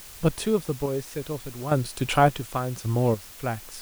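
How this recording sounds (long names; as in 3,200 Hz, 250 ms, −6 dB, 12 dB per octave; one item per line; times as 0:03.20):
sample-and-hold tremolo, depth 80%
a quantiser's noise floor 8 bits, dither triangular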